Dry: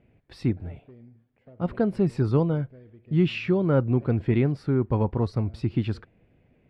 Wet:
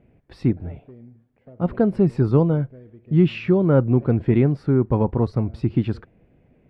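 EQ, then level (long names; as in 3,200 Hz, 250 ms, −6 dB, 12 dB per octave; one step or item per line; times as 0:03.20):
parametric band 100 Hz −6 dB 0.24 octaves
high-shelf EQ 2,000 Hz −9.5 dB
+5.5 dB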